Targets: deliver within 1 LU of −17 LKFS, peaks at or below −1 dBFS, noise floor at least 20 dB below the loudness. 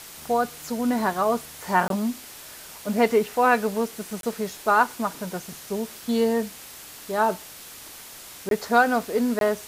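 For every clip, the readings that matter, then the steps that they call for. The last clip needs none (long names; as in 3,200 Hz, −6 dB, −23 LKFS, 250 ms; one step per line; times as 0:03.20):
number of dropouts 4; longest dropout 22 ms; background noise floor −43 dBFS; target noise floor −45 dBFS; integrated loudness −24.5 LKFS; sample peak −5.0 dBFS; target loudness −17.0 LKFS
→ repair the gap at 0:01.88/0:04.21/0:08.49/0:09.39, 22 ms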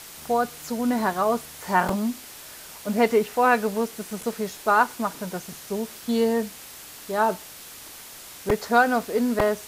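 number of dropouts 0; background noise floor −43 dBFS; target noise floor −45 dBFS
→ broadband denoise 6 dB, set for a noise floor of −43 dBFS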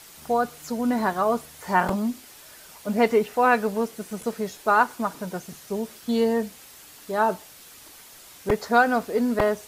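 background noise floor −48 dBFS; integrated loudness −24.5 LKFS; sample peak −5.0 dBFS; target loudness −17.0 LKFS
→ level +7.5 dB
brickwall limiter −1 dBFS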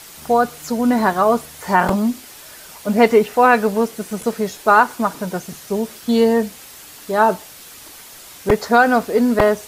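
integrated loudness −17.5 LKFS; sample peak −1.0 dBFS; background noise floor −40 dBFS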